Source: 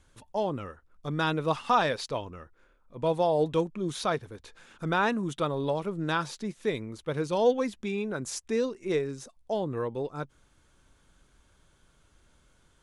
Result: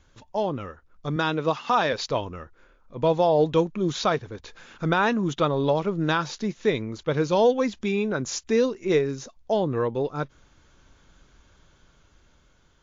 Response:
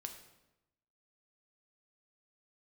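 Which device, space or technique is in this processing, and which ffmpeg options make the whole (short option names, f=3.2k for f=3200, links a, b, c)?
low-bitrate web radio: -filter_complex "[0:a]asettb=1/sr,asplit=3[a][b][c];[a]atrim=end=1.164[d];[b]atrim=start=1.16:end=1.93,asetpts=PTS-STARTPTS,afade=t=in:d=0.004:c=qsin,afade=t=out:st=0.766:d=0.004:c=qsin,highpass=150[e];[c]atrim=start=1.926[f];[d][e]acrossfade=d=0.004:c1=hsin:c2=qsin[g];[g][f]acrossfade=d=0.004:c1=qsin:c2=hsin,dynaudnorm=f=340:g=7:m=3.5dB,alimiter=limit=-14dB:level=0:latency=1:release=236,volume=3.5dB" -ar 16000 -c:a libmp3lame -b:a 48k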